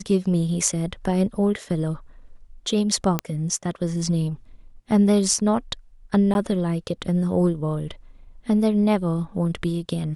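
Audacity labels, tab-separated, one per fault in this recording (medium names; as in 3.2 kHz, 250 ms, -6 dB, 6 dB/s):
3.190000	3.190000	pop -8 dBFS
6.340000	6.350000	dropout 11 ms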